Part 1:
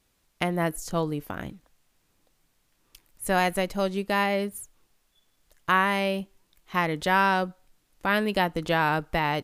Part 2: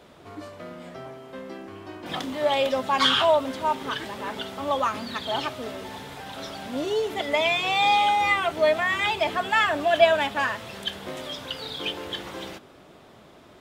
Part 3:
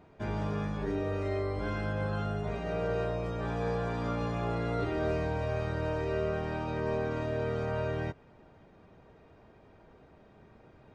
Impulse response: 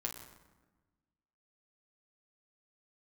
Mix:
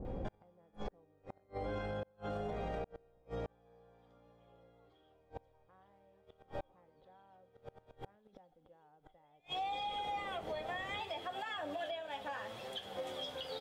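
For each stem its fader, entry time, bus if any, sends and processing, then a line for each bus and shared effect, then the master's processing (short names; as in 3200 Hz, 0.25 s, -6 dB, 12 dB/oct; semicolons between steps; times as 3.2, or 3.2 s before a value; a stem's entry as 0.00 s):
-7.0 dB, 0.00 s, muted 3.23–5.14, send -14 dB, Bessel low-pass 950 Hz, order 2; low-pass opened by the level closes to 420 Hz, open at -24.5 dBFS; backwards sustainer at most 31 dB/s
-11.0 dB, 1.90 s, send -7 dB, flange 0.74 Hz, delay 7.5 ms, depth 5.3 ms, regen +31%; compressor 16:1, threshold -31 dBFS, peak gain reduction 19 dB
+2.0 dB, 0.05 s, send -13 dB, auto duck -8 dB, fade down 0.50 s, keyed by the first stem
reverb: on, RT60 1.2 s, pre-delay 8 ms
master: small resonant body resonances 530/760/3300 Hz, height 14 dB, ringing for 55 ms; flipped gate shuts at -22 dBFS, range -39 dB; limiter -32 dBFS, peak gain reduction 11.5 dB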